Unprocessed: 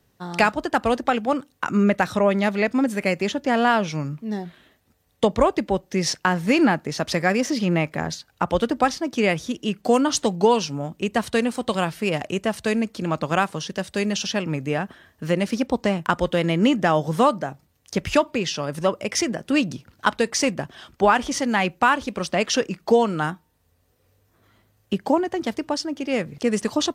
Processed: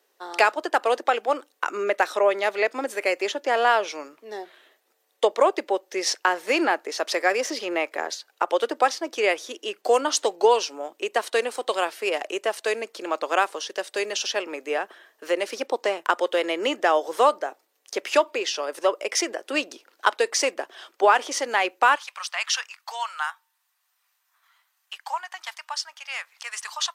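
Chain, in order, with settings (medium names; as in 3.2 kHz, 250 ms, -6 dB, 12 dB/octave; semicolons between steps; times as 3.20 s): steep high-pass 360 Hz 36 dB/octave, from 21.95 s 910 Hz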